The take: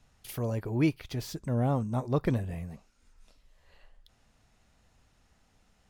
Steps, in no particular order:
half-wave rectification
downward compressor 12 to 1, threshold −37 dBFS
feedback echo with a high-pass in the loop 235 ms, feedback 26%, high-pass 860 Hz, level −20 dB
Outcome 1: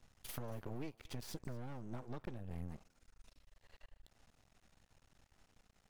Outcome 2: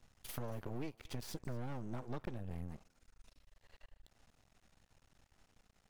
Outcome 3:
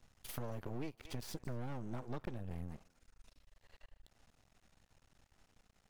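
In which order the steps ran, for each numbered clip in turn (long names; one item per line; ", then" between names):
downward compressor, then half-wave rectification, then feedback echo with a high-pass in the loop
half-wave rectification, then downward compressor, then feedback echo with a high-pass in the loop
half-wave rectification, then feedback echo with a high-pass in the loop, then downward compressor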